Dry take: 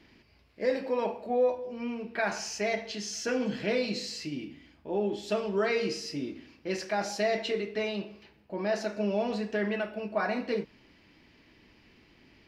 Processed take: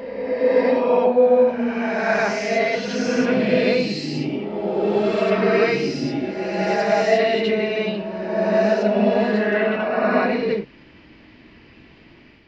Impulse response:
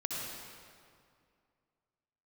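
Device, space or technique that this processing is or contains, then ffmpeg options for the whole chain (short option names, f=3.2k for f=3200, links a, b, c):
reverse reverb: -filter_complex "[0:a]lowpass=3.7k,areverse[a];[1:a]atrim=start_sample=2205[b];[a][b]afir=irnorm=-1:irlink=0,areverse,volume=8dB"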